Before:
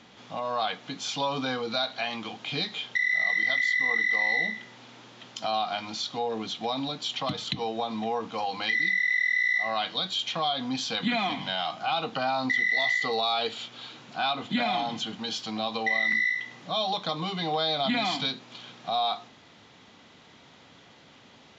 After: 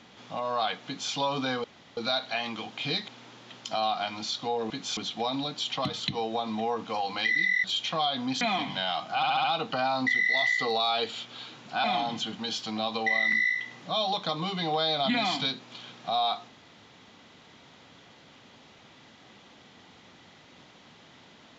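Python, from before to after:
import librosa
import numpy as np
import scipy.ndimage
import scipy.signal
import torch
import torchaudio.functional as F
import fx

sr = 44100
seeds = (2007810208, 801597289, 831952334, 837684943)

y = fx.edit(x, sr, fx.duplicate(start_s=0.86, length_s=0.27, to_s=6.41),
    fx.insert_room_tone(at_s=1.64, length_s=0.33),
    fx.cut(start_s=2.75, length_s=2.04),
    fx.cut(start_s=9.08, length_s=0.99),
    fx.cut(start_s=10.84, length_s=0.28),
    fx.stutter(start_s=11.87, slice_s=0.07, count=5),
    fx.cut(start_s=14.27, length_s=0.37), tone=tone)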